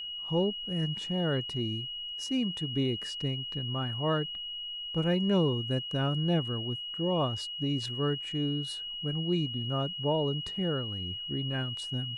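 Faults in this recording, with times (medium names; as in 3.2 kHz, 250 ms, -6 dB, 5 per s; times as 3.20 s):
whine 2.9 kHz -36 dBFS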